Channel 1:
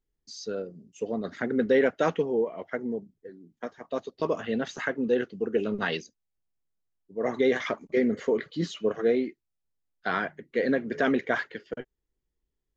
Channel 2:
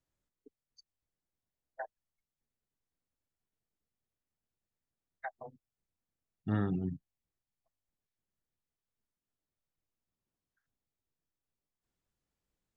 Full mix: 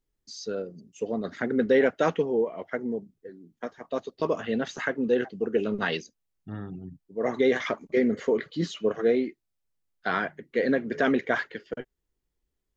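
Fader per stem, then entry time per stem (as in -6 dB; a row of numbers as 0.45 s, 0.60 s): +1.0 dB, -5.5 dB; 0.00 s, 0.00 s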